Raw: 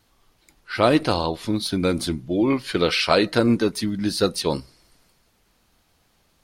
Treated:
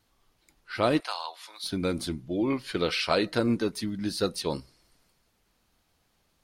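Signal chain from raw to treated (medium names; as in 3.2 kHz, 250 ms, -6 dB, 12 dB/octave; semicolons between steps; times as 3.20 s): 1.00–1.64 s: high-pass 820 Hz 24 dB/octave; trim -7 dB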